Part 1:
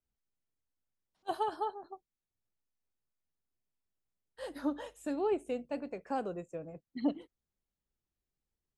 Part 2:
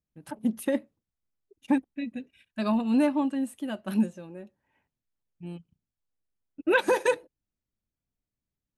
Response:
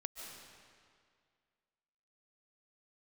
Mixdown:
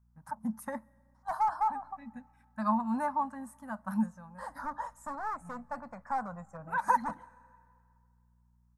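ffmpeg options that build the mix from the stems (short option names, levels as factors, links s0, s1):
-filter_complex "[0:a]aeval=exprs='val(0)+0.000398*(sin(2*PI*60*n/s)+sin(2*PI*2*60*n/s)/2+sin(2*PI*3*60*n/s)/3+sin(2*PI*4*60*n/s)/4+sin(2*PI*5*60*n/s)/5)':c=same,volume=44.7,asoftclip=hard,volume=0.0224,volume=1.26,asplit=3[s0][s1][s2];[s1]volume=0.0891[s3];[1:a]volume=0.562,asplit=2[s4][s5];[s5]volume=0.0708[s6];[s2]apad=whole_len=387086[s7];[s4][s7]sidechaincompress=threshold=0.00251:ratio=8:attack=27:release=117[s8];[2:a]atrim=start_sample=2205[s9];[s3][s6]amix=inputs=2:normalize=0[s10];[s10][s9]afir=irnorm=-1:irlink=0[s11];[s0][s8][s11]amix=inputs=3:normalize=0,firequalizer=gain_entry='entry(220,0);entry(360,-30);entry(530,-9);entry(930,12);entry(1900,-2);entry(2800,-23);entry(5400,-3)':delay=0.05:min_phase=1"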